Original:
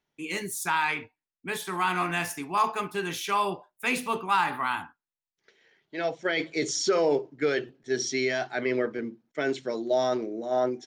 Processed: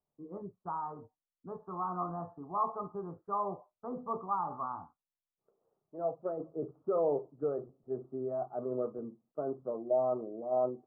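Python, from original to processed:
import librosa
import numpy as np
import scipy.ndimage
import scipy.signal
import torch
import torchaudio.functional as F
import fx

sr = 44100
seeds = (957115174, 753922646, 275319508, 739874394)

y = scipy.signal.sosfilt(scipy.signal.butter(12, 1200.0, 'lowpass', fs=sr, output='sos'), x)
y = y + 0.36 * np.pad(y, (int(1.6 * sr / 1000.0), 0))[:len(y)]
y = F.gain(torch.from_numpy(y), -6.5).numpy()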